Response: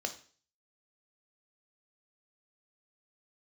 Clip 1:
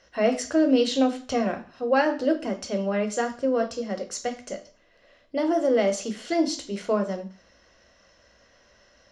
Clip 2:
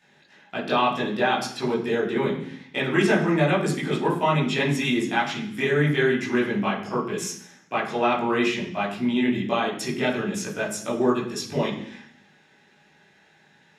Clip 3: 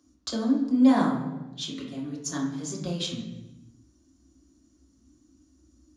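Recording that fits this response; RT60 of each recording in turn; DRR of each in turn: 1; 0.45, 0.65, 1.1 s; 5.5, -6.5, -5.5 dB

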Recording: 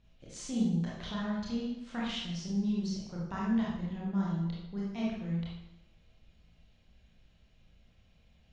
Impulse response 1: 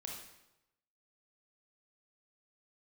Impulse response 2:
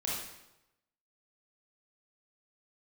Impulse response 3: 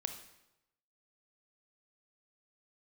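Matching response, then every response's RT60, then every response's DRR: 2; 0.90, 0.90, 0.90 s; -1.0, -5.5, 6.5 dB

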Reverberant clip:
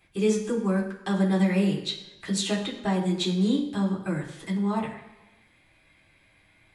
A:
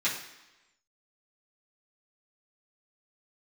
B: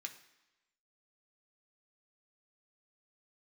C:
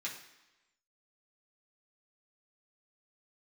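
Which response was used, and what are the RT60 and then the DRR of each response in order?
C; 1.0, 1.0, 1.0 s; -10.5, 3.5, -5.5 dB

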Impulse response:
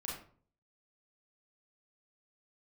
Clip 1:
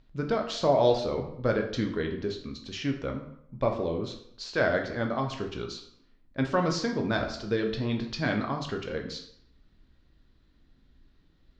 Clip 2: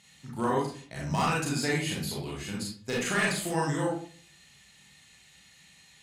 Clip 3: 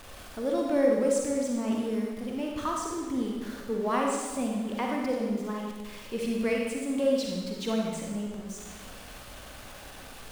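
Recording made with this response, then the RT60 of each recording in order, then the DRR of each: 2; 0.70, 0.50, 1.4 s; 2.5, -5.0, -1.5 dB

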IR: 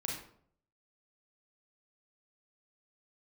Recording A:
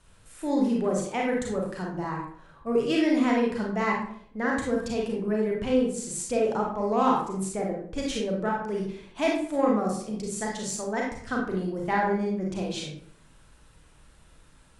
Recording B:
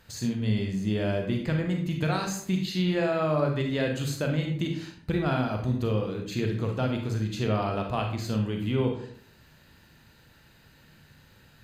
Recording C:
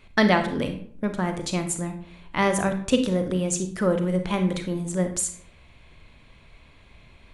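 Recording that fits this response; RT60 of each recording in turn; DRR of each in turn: A; 0.60, 0.60, 0.60 s; -2.0, 2.5, 6.5 dB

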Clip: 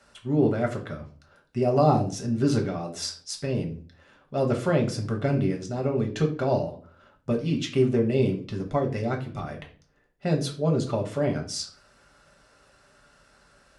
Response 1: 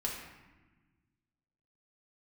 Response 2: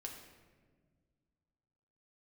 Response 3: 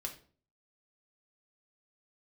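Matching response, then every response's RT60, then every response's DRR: 3; 1.2, 1.6, 0.45 s; -3.0, 0.5, 1.0 dB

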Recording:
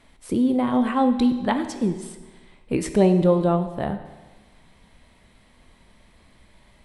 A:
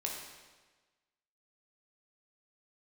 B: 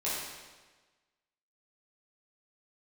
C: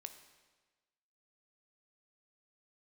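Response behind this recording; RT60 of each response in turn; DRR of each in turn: C; 1.3, 1.3, 1.3 s; -1.5, -9.5, 7.5 dB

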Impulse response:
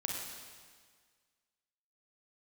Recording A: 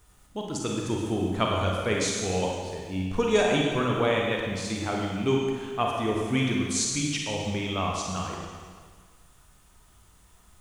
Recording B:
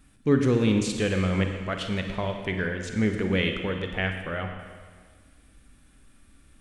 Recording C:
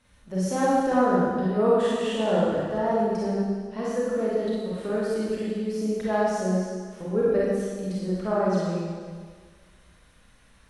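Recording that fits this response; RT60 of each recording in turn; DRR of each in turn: A; 1.7, 1.7, 1.7 s; -1.5, 4.5, -7.5 dB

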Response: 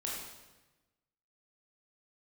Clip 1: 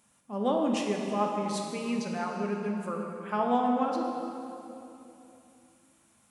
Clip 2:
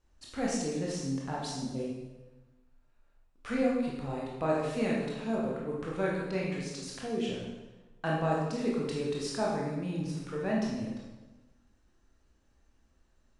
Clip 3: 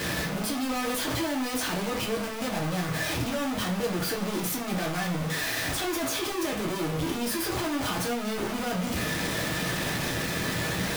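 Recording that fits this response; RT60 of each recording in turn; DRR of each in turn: 2; 3.0, 1.1, 0.40 s; 0.5, -4.5, -2.5 dB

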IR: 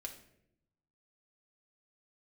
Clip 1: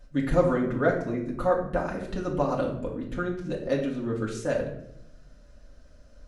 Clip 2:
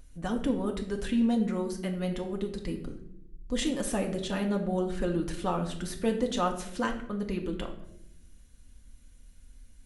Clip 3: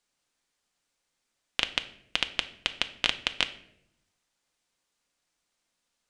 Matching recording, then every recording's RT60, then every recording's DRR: 2; 0.75, 0.75, 0.80 s; -4.0, 1.5, 8.5 dB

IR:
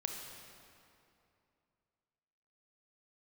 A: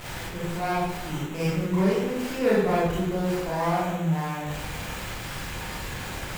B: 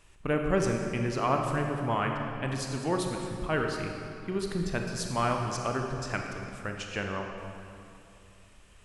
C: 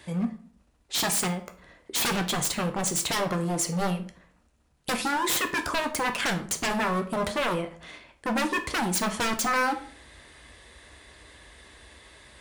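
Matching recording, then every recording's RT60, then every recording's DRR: B; 0.85, 2.7, 0.50 s; -8.5, 2.0, 6.0 dB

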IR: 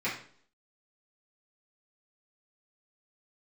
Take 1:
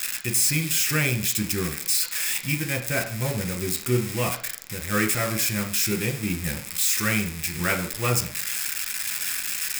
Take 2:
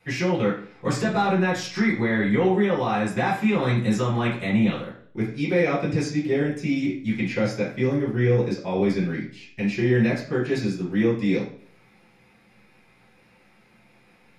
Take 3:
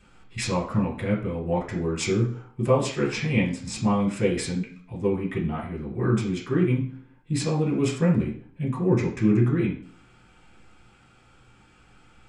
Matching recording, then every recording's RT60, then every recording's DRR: 2; 0.55, 0.55, 0.55 s; 3.5, -9.5, -4.5 dB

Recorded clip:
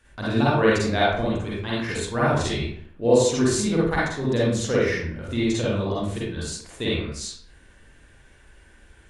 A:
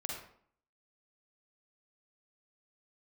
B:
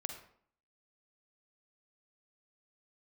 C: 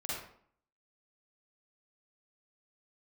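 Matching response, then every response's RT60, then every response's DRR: C; 0.60, 0.60, 0.60 s; -1.5, 5.0, -7.5 dB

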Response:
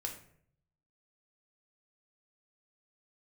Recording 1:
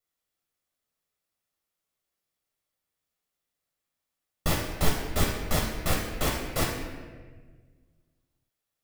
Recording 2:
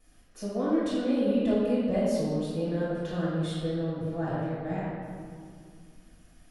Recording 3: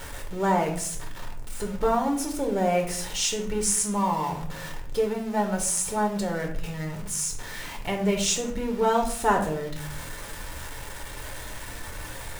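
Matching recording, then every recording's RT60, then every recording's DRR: 3; 1.5, 2.2, 0.60 s; -1.5, -10.5, 1.5 dB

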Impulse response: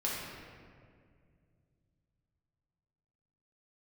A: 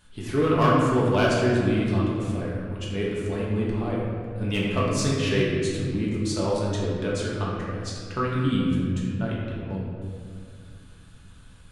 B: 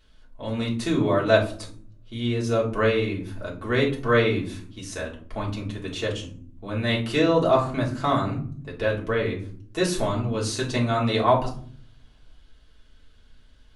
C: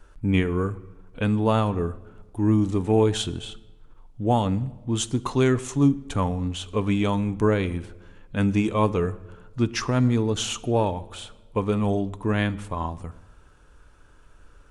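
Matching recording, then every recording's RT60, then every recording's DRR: A; 2.1, 0.50, 1.3 s; -6.0, -4.5, 13.0 dB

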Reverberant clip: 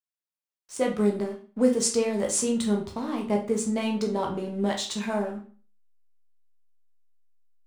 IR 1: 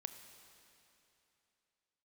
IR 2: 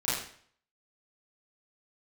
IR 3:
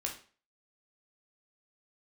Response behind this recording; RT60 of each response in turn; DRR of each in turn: 3; 2.9, 0.55, 0.40 s; 8.0, -12.0, 0.0 dB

